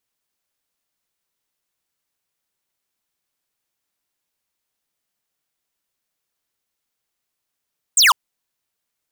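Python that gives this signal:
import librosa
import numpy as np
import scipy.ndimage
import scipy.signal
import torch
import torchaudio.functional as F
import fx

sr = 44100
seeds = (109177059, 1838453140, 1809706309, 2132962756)

y = fx.laser_zap(sr, level_db=-11.5, start_hz=8700.0, end_hz=900.0, length_s=0.15, wave='square')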